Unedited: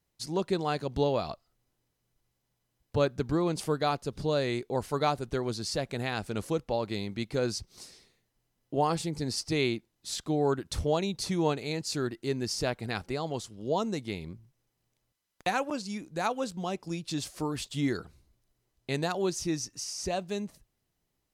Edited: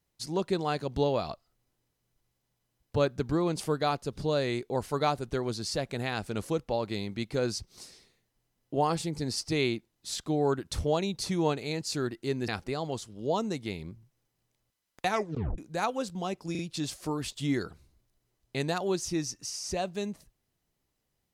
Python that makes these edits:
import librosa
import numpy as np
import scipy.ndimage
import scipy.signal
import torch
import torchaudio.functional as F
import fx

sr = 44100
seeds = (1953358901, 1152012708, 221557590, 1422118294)

y = fx.edit(x, sr, fx.cut(start_s=12.48, length_s=0.42),
    fx.tape_stop(start_s=15.51, length_s=0.49),
    fx.stutter(start_s=16.93, slice_s=0.04, count=3), tone=tone)